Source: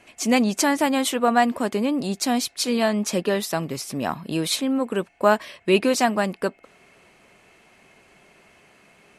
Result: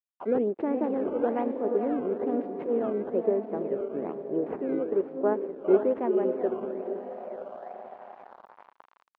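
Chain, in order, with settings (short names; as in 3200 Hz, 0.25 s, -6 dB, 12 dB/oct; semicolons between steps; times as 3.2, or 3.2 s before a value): Wiener smoothing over 15 samples; on a send: diffused feedback echo 0.469 s, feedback 50%, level -5 dB; on the sum: decimation with a swept rate 14×, swing 160% 1.1 Hz; formant shift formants +2 st; LPF 2600 Hz 24 dB/oct; bell 300 Hz +2.5 dB 1.7 oct; crossover distortion -42.5 dBFS; reverse; upward compressor, threshold -26 dBFS; reverse; auto-wah 410–1100 Hz, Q 3.1, down, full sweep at -24.5 dBFS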